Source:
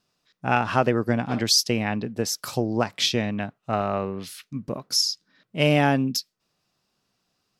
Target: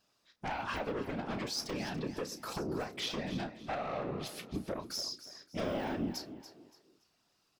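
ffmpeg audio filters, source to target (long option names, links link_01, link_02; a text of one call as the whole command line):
ffmpeg -i in.wav -filter_complex "[0:a]deesser=0.95,equalizer=frequency=84:width_type=o:width=1.8:gain=-10,acompressor=threshold=-29dB:ratio=5,aeval=exprs='0.15*sin(PI/2*2.82*val(0)/0.15)':channel_layout=same,afftfilt=real='hypot(re,im)*cos(2*PI*random(0))':imag='hypot(re,im)*sin(2*PI*random(1))':win_size=512:overlap=0.75,asplit=2[link_01][link_02];[link_02]adelay=32,volume=-11dB[link_03];[link_01][link_03]amix=inputs=2:normalize=0,asplit=4[link_04][link_05][link_06][link_07];[link_05]adelay=285,afreqshift=32,volume=-13dB[link_08];[link_06]adelay=570,afreqshift=64,volume=-22.9dB[link_09];[link_07]adelay=855,afreqshift=96,volume=-32.8dB[link_10];[link_04][link_08][link_09][link_10]amix=inputs=4:normalize=0,volume=-8dB" out.wav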